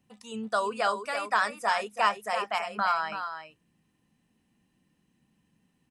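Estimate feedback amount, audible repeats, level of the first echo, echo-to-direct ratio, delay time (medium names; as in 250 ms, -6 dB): no regular repeats, 1, -8.5 dB, -8.5 dB, 333 ms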